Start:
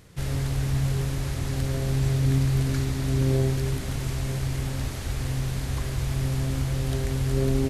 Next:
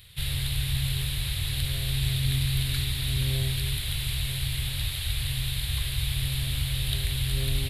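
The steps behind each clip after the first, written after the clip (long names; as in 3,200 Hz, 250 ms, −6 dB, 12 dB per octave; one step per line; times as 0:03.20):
drawn EQ curve 110 Hz 0 dB, 230 Hz −19 dB, 1,300 Hz −7 dB, 3,800 Hz +15 dB, 6,000 Hz −11 dB, 10,000 Hz +9 dB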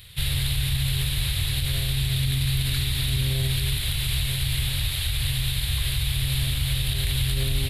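brickwall limiter −20 dBFS, peak gain reduction 7.5 dB
level +5 dB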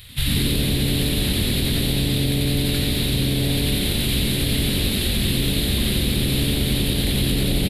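speech leveller
on a send: echo with shifted repeats 89 ms, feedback 44%, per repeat +150 Hz, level −4 dB
on the sum: level +2 dB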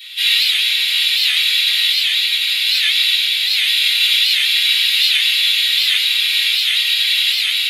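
four-pole ladder high-pass 1,900 Hz, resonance 45%
convolution reverb RT60 0.35 s, pre-delay 3 ms, DRR −10 dB
wow of a warped record 78 rpm, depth 160 cents
level +4 dB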